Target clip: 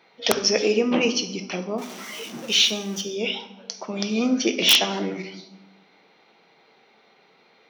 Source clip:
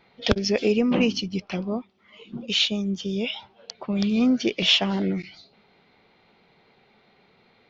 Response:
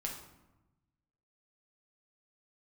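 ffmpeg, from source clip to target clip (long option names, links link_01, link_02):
-filter_complex "[0:a]asettb=1/sr,asplit=3[link_01][link_02][link_03];[link_01]atrim=end=1.784[link_04];[link_02]atrim=start=1.78:end=3.01,asetpts=PTS-STARTPTS,afade=type=in:duration=0.004:curve=qsin,afade=type=out:start_time=1.226:duration=0.004:curve=qsin,aeval=exprs='val(0)+0.5*0.0178*sgn(val(0))':channel_layout=same[link_05];[link_03]atrim=start=3.006[link_06];[link_04][link_05]acrossfade=duration=0.004:curve1=hsin:curve2=qsin[link_07];[link_07][link_06]acrossfade=duration=0.004:curve1=qsin:curve2=hsin,asplit=2[link_08][link_09];[link_09]equalizer=frequency=5800:width_type=o:width=0.23:gain=15[link_10];[1:a]atrim=start_sample=2205[link_11];[link_10][link_11]afir=irnorm=-1:irlink=0,volume=-0.5dB[link_12];[link_08][link_12]amix=inputs=2:normalize=0,aeval=exprs='(mod(1.41*val(0)+1,2)-1)/1.41':channel_layout=same,highpass=290,volume=-2dB"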